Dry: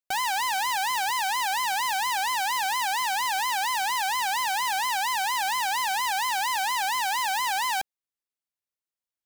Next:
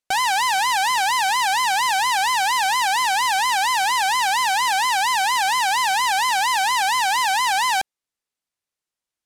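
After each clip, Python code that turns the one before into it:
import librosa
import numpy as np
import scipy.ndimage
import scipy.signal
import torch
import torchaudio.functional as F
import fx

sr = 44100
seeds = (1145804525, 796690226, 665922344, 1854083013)

y = scipy.signal.sosfilt(scipy.signal.butter(2, 11000.0, 'lowpass', fs=sr, output='sos'), x)
y = y * 10.0 ** (7.0 / 20.0)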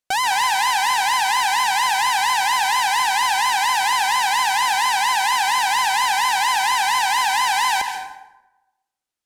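y = fx.rev_plate(x, sr, seeds[0], rt60_s=1.0, hf_ratio=0.6, predelay_ms=120, drr_db=6.0)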